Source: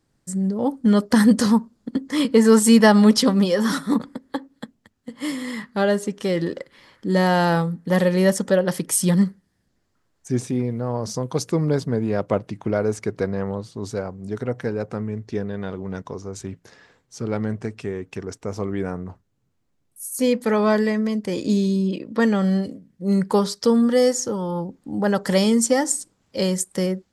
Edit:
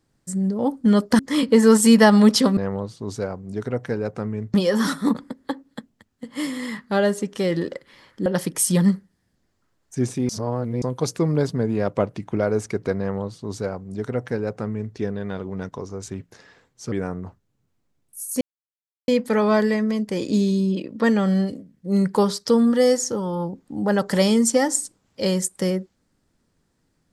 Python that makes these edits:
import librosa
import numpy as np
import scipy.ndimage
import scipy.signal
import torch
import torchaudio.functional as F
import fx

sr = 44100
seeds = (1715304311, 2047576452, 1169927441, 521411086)

y = fx.edit(x, sr, fx.cut(start_s=1.19, length_s=0.82),
    fx.cut(start_s=7.11, length_s=1.48),
    fx.reverse_span(start_s=10.62, length_s=0.53),
    fx.duplicate(start_s=13.32, length_s=1.97, to_s=3.39),
    fx.cut(start_s=17.25, length_s=1.5),
    fx.insert_silence(at_s=20.24, length_s=0.67), tone=tone)